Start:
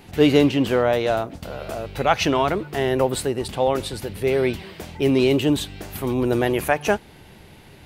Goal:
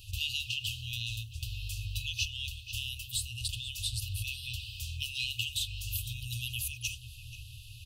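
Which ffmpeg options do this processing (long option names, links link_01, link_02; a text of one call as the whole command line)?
ffmpeg -i in.wav -filter_complex "[0:a]asplit=2[link_01][link_02];[link_02]adelay=480,lowpass=frequency=2000:poles=1,volume=-14.5dB,asplit=2[link_03][link_04];[link_04]adelay=480,lowpass=frequency=2000:poles=1,volume=0.49,asplit=2[link_05][link_06];[link_06]adelay=480,lowpass=frequency=2000:poles=1,volume=0.49,asplit=2[link_07][link_08];[link_08]adelay=480,lowpass=frequency=2000:poles=1,volume=0.49,asplit=2[link_09][link_10];[link_10]adelay=480,lowpass=frequency=2000:poles=1,volume=0.49[link_11];[link_01][link_03][link_05][link_07][link_09][link_11]amix=inputs=6:normalize=0,acrossover=split=660|2200[link_12][link_13][link_14];[link_12]acompressor=threshold=-28dB:ratio=4[link_15];[link_13]acompressor=threshold=-38dB:ratio=4[link_16];[link_14]acompressor=threshold=-34dB:ratio=4[link_17];[link_15][link_16][link_17]amix=inputs=3:normalize=0,afftfilt=real='re*(1-between(b*sr/4096,120,2500))':imag='im*(1-between(b*sr/4096,120,2500))':win_size=4096:overlap=0.75,volume=2dB" out.wav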